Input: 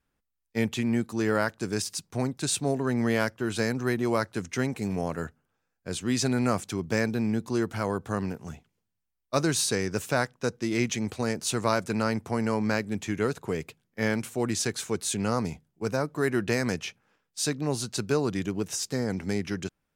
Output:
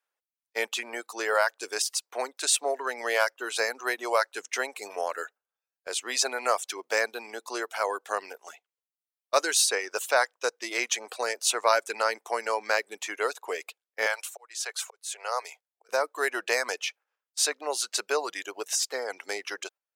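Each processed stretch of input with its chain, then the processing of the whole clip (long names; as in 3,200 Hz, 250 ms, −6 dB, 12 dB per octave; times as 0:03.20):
0:14.06–0:15.89: volume swells 611 ms + high-pass filter 520 Hz 24 dB per octave
whole clip: inverse Chebyshev high-pass filter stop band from 150 Hz, stop band 60 dB; noise gate −53 dBFS, range −8 dB; reverb reduction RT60 0.63 s; level +5 dB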